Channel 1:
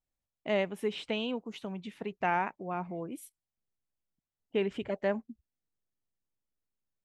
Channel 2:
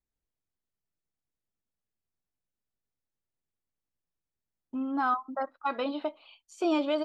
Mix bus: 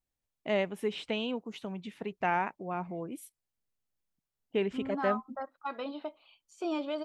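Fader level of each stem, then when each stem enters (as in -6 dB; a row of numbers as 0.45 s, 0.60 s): 0.0 dB, -6.5 dB; 0.00 s, 0.00 s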